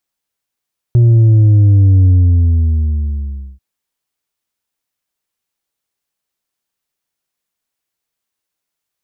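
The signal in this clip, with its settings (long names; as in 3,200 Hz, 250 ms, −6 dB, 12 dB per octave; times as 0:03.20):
bass drop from 120 Hz, over 2.64 s, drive 4 dB, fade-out 1.54 s, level −5.5 dB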